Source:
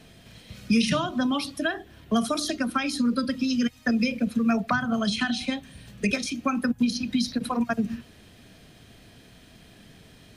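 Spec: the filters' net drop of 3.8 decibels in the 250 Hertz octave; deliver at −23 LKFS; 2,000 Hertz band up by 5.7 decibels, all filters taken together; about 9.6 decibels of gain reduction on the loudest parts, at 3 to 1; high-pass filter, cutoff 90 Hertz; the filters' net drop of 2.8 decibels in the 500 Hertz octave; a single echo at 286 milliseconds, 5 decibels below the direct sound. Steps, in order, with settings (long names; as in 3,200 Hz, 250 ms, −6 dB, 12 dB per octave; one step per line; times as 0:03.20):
high-pass filter 90 Hz
parametric band 250 Hz −3.5 dB
parametric band 500 Hz −3.5 dB
parametric band 2,000 Hz +8 dB
downward compressor 3 to 1, threshold −31 dBFS
single-tap delay 286 ms −5 dB
level +9 dB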